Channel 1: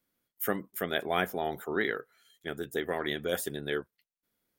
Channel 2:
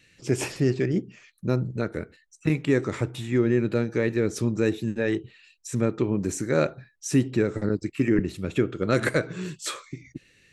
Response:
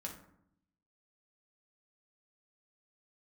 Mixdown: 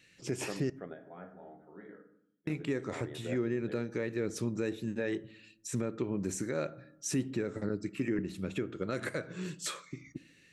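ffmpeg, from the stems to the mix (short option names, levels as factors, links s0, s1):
-filter_complex "[0:a]lowpass=1100,volume=0.398,asplit=2[s0][s1];[s1]volume=0.376[s2];[1:a]volume=0.596,asplit=3[s3][s4][s5];[s3]atrim=end=0.7,asetpts=PTS-STARTPTS,afade=t=out:st=0.696:d=0.004:c=hsin[s6];[s4]atrim=start=0.7:end=2.47,asetpts=PTS-STARTPTS,volume=0[s7];[s5]atrim=start=2.47,asetpts=PTS-STARTPTS,afade=t=in:d=0.004:c=hsin[s8];[s6][s7][s8]concat=n=3:v=0:a=1,asplit=3[s9][s10][s11];[s10]volume=0.251[s12];[s11]apad=whole_len=202263[s13];[s0][s13]sidechaingate=range=0.0224:threshold=0.00158:ratio=16:detection=peak[s14];[2:a]atrim=start_sample=2205[s15];[s2][s12]amix=inputs=2:normalize=0[s16];[s16][s15]afir=irnorm=-1:irlink=0[s17];[s14][s9][s17]amix=inputs=3:normalize=0,lowshelf=f=74:g=-10.5,alimiter=limit=0.0708:level=0:latency=1:release=388"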